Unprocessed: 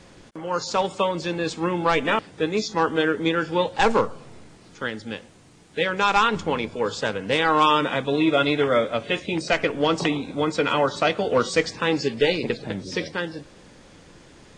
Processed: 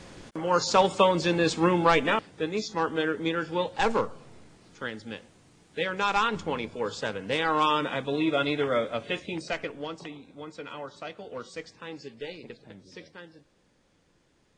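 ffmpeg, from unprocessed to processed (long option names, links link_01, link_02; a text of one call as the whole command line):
ffmpeg -i in.wav -af "volume=2dB,afade=type=out:start_time=1.66:duration=0.62:silence=0.398107,afade=type=out:start_time=9.09:duration=0.9:silence=0.251189" out.wav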